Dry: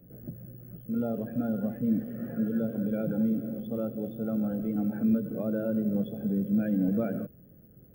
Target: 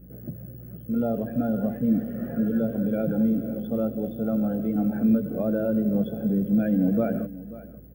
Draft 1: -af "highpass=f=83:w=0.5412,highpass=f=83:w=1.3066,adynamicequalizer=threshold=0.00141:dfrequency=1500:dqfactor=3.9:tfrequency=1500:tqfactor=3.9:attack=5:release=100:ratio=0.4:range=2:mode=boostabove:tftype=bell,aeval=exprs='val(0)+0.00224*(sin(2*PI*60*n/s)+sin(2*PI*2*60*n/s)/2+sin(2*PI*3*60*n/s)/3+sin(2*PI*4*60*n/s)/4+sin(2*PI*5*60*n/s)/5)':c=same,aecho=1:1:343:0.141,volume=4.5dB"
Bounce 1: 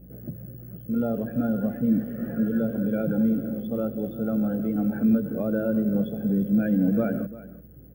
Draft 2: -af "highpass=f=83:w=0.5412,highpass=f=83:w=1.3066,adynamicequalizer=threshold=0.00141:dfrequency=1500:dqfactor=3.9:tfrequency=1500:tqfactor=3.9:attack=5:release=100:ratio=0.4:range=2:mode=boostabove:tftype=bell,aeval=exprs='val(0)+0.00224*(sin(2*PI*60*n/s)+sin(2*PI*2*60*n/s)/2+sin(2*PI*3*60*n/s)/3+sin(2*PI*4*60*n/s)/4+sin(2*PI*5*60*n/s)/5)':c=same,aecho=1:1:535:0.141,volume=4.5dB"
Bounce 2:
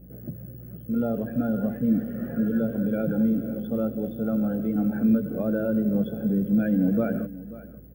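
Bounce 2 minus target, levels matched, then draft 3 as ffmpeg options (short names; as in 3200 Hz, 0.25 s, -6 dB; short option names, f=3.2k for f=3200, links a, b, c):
2000 Hz band +3.5 dB
-af "highpass=f=83:w=0.5412,highpass=f=83:w=1.3066,adynamicequalizer=threshold=0.00141:dfrequency=680:dqfactor=3.9:tfrequency=680:tqfactor=3.9:attack=5:release=100:ratio=0.4:range=2:mode=boostabove:tftype=bell,aeval=exprs='val(0)+0.00224*(sin(2*PI*60*n/s)+sin(2*PI*2*60*n/s)/2+sin(2*PI*3*60*n/s)/3+sin(2*PI*4*60*n/s)/4+sin(2*PI*5*60*n/s)/5)':c=same,aecho=1:1:535:0.141,volume=4.5dB"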